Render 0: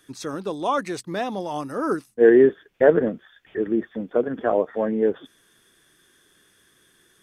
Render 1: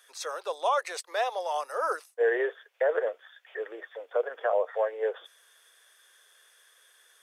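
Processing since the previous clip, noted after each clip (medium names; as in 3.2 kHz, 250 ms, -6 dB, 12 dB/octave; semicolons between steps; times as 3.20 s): steep high-pass 490 Hz 48 dB/octave; peak limiter -17 dBFS, peak gain reduction 11 dB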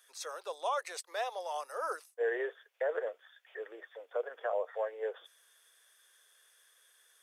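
treble shelf 5.6 kHz +5.5 dB; trim -7.5 dB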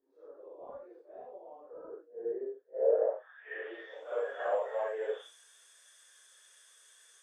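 phase randomisation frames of 200 ms; in parallel at -8.5 dB: saturation -29 dBFS, distortion -15 dB; on the sum: low-pass sweep 270 Hz -> 7.7 kHz, 2.64–4.08 s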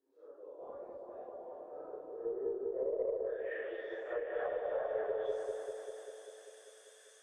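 low-pass that closes with the level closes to 330 Hz, closed at -28.5 dBFS; delay with an opening low-pass 197 ms, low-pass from 750 Hz, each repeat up 1 oct, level 0 dB; Chebyshev shaper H 4 -34 dB, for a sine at -21.5 dBFS; trim -2.5 dB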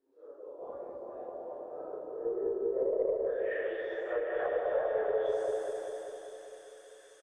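algorithmic reverb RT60 3.6 s, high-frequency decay 0.25×, pre-delay 60 ms, DRR 7 dB; resampled via 32 kHz; tape noise reduction on one side only decoder only; trim +4.5 dB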